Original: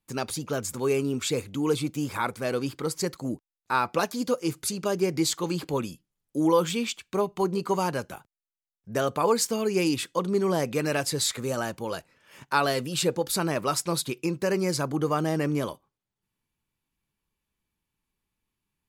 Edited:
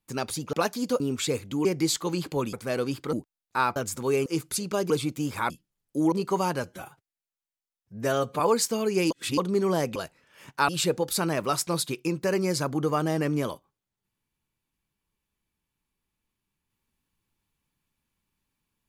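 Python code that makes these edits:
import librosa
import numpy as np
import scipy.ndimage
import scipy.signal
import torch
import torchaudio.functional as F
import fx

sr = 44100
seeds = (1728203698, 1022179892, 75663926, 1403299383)

y = fx.edit(x, sr, fx.swap(start_s=0.53, length_s=0.5, other_s=3.91, other_length_s=0.47),
    fx.swap(start_s=1.68, length_s=0.6, other_s=5.02, other_length_s=0.88),
    fx.cut(start_s=2.88, length_s=0.4),
    fx.cut(start_s=6.52, length_s=0.98),
    fx.stretch_span(start_s=8.02, length_s=1.17, factor=1.5),
    fx.reverse_span(start_s=9.9, length_s=0.27),
    fx.cut(start_s=10.75, length_s=1.14),
    fx.cut(start_s=12.62, length_s=0.25), tone=tone)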